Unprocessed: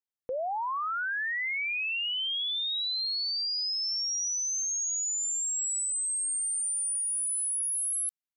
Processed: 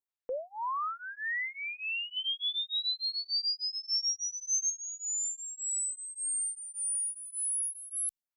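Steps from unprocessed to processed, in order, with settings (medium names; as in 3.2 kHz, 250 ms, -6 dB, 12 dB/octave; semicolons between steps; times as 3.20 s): 2.16–4.70 s: comb 5 ms, depth 99%; lamp-driven phase shifter 1.7 Hz; trim -1 dB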